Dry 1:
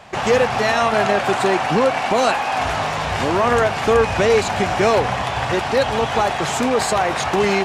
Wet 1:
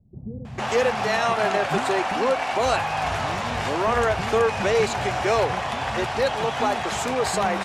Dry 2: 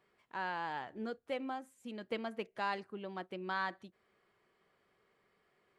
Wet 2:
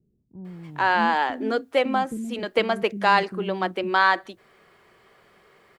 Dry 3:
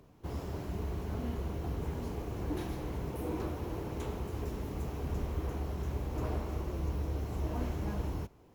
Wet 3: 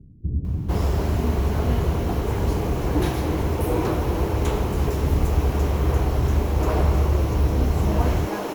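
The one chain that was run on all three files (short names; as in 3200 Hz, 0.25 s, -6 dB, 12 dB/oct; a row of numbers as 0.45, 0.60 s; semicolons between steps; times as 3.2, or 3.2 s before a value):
bands offset in time lows, highs 0.45 s, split 250 Hz; match loudness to -23 LUFS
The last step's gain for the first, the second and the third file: -4.5, +18.0, +15.5 dB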